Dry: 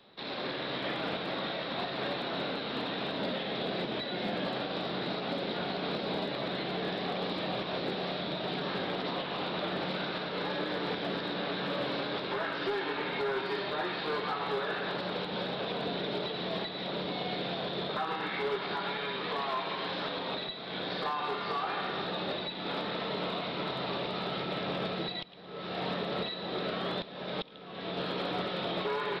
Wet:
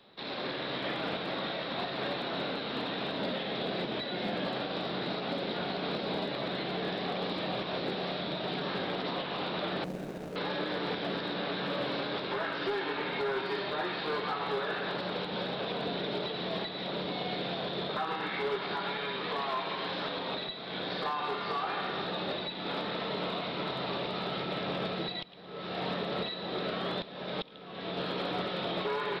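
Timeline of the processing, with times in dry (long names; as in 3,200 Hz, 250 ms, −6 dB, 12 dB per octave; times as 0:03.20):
0:09.84–0:10.36: running median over 41 samples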